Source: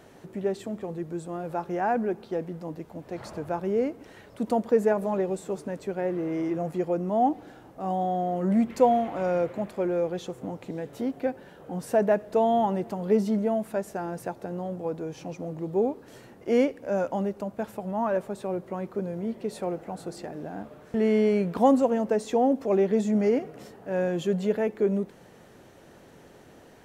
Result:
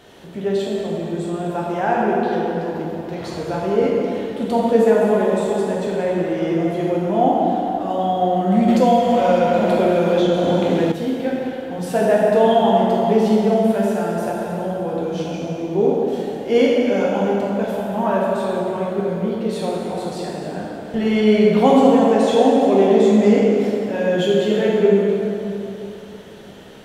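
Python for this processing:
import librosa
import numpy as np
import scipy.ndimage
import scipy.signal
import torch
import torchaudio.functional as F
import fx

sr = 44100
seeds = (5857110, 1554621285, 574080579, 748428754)

y = fx.peak_eq(x, sr, hz=3300.0, db=10.0, octaves=0.81)
y = fx.rev_plate(y, sr, seeds[0], rt60_s=3.2, hf_ratio=0.65, predelay_ms=0, drr_db=-5.5)
y = fx.band_squash(y, sr, depth_pct=100, at=(8.68, 10.92))
y = y * 10.0 ** (2.0 / 20.0)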